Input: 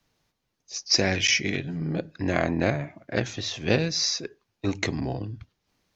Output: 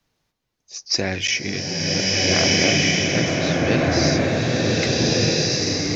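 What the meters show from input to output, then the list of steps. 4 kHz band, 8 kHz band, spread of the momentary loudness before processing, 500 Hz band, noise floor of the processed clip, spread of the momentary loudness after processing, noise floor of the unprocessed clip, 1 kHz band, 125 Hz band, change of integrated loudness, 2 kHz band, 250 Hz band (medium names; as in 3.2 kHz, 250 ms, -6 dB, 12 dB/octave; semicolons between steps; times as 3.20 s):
+8.0 dB, no reading, 13 LU, +7.5 dB, -76 dBFS, 7 LU, -79 dBFS, +7.0 dB, +7.5 dB, +7.0 dB, +7.5 dB, +7.5 dB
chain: swelling reverb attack 1580 ms, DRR -7 dB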